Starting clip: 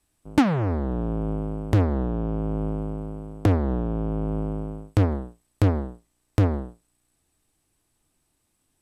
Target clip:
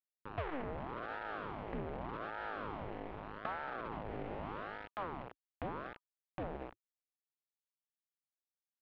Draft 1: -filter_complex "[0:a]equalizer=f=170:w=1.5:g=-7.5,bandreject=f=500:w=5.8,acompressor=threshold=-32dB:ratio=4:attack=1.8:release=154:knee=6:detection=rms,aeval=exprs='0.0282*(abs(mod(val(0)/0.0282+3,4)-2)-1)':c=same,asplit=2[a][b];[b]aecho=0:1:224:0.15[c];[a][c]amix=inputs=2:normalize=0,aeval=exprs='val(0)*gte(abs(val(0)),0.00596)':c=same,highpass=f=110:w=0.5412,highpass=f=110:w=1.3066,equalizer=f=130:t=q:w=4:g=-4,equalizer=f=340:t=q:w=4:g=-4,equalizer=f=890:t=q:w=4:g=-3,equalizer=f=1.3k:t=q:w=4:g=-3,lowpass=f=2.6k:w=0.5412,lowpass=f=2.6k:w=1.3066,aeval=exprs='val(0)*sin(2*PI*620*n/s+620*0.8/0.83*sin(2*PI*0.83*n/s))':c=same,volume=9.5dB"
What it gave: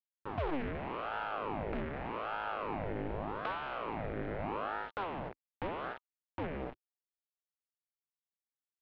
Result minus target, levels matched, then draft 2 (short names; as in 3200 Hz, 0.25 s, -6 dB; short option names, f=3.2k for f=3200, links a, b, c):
compressor: peak gain reduction -8 dB
-filter_complex "[0:a]equalizer=f=170:w=1.5:g=-7.5,bandreject=f=500:w=5.8,acompressor=threshold=-42.5dB:ratio=4:attack=1.8:release=154:knee=6:detection=rms,aeval=exprs='0.0282*(abs(mod(val(0)/0.0282+3,4)-2)-1)':c=same,asplit=2[a][b];[b]aecho=0:1:224:0.15[c];[a][c]amix=inputs=2:normalize=0,aeval=exprs='val(0)*gte(abs(val(0)),0.00596)':c=same,highpass=f=110:w=0.5412,highpass=f=110:w=1.3066,equalizer=f=130:t=q:w=4:g=-4,equalizer=f=340:t=q:w=4:g=-4,equalizer=f=890:t=q:w=4:g=-3,equalizer=f=1.3k:t=q:w=4:g=-3,lowpass=f=2.6k:w=0.5412,lowpass=f=2.6k:w=1.3066,aeval=exprs='val(0)*sin(2*PI*620*n/s+620*0.8/0.83*sin(2*PI*0.83*n/s))':c=same,volume=9.5dB"